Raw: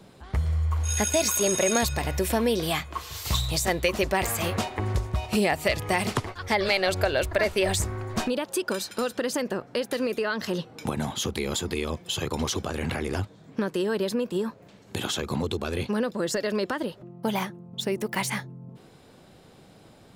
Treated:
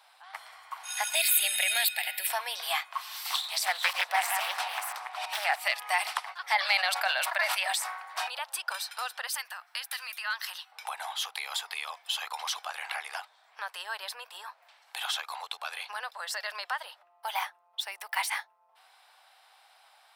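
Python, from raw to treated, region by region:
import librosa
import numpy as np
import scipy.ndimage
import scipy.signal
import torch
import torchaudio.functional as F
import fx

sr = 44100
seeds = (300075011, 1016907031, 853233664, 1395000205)

y = fx.chain(x, sr, fx.high_shelf(hz=2400.0, db=11.5),
    fx.fixed_phaser(hz=2600.0, stages=4), at=(1.15, 2.27))
y = fx.chain(y, sr, fx.reverse_delay(ms=331, wet_db=-4.5),
    fx.low_shelf(hz=150.0, db=-7.5),
    fx.doppler_dist(depth_ms=0.55), at=(3.27, 5.61))
y = fx.chain(y, sr, fx.highpass(hz=500.0, slope=24),
    fx.sustainer(db_per_s=57.0), at=(6.55, 8.39))
y = fx.chain(y, sr, fx.highpass(hz=1200.0, slope=12),
    fx.high_shelf(hz=9600.0, db=10.0),
    fx.clip_hard(threshold_db=-20.5), at=(9.27, 10.72))
y = scipy.signal.sosfilt(scipy.signal.ellip(4, 1.0, 60, 760.0, 'highpass', fs=sr, output='sos'), y)
y = fx.peak_eq(y, sr, hz=6800.0, db=-11.0, octaves=0.25)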